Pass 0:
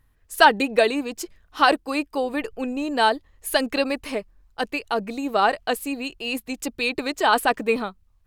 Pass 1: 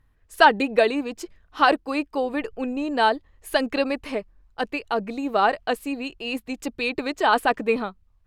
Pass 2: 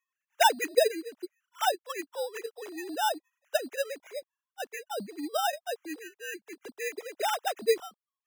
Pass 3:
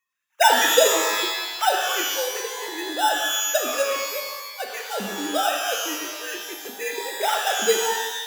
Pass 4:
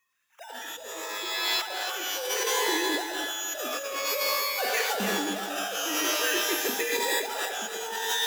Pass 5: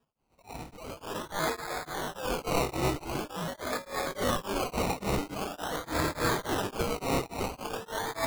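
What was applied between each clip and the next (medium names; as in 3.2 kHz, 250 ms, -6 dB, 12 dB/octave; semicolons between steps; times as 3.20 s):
low-pass 3.3 kHz 6 dB/octave
formants replaced by sine waves; sample-and-hold 10×; trim -8 dB
pitch-shifted reverb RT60 1.2 s, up +12 st, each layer -2 dB, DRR 1.5 dB; trim +4.5 dB
compressor with a negative ratio -32 dBFS, ratio -1; bit-crushed delay 295 ms, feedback 35%, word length 8-bit, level -8 dB
decimation with a swept rate 21×, swing 60% 0.45 Hz; tremolo of two beating tones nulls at 3.5 Hz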